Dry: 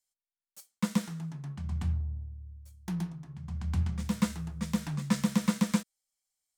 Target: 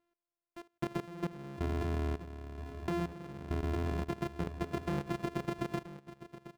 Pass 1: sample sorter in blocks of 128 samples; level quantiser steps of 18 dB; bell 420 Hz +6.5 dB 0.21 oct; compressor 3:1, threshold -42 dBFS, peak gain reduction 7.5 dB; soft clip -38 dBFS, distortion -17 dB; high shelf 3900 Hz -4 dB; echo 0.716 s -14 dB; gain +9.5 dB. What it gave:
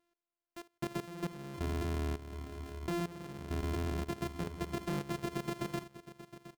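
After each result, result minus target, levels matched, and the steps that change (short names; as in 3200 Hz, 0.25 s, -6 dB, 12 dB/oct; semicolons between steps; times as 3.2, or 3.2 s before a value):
soft clip: distortion +15 dB; 8000 Hz band +7.0 dB; echo 0.261 s early
change: soft clip -28.5 dBFS, distortion -32 dB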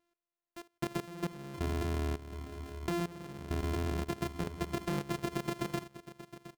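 8000 Hz band +7.5 dB; echo 0.261 s early
change: high shelf 3900 Hz -14.5 dB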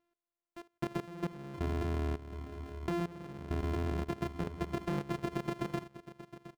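echo 0.261 s early
change: echo 0.977 s -14 dB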